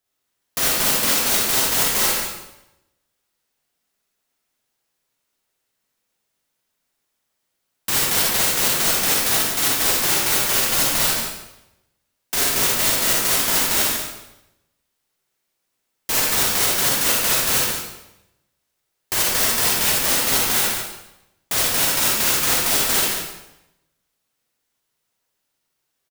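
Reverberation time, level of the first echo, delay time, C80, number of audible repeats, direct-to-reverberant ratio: 0.90 s, -7.0 dB, 144 ms, 1.0 dB, 1, -4.5 dB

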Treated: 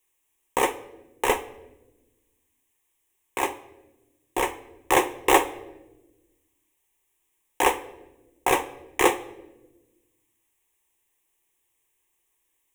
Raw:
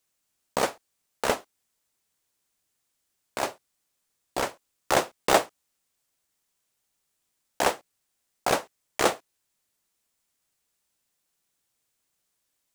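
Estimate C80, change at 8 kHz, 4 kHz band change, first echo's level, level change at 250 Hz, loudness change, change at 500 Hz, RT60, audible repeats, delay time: 18.5 dB, +2.0 dB, 0.0 dB, no echo, +4.5 dB, +2.5 dB, +2.0 dB, 1.1 s, no echo, no echo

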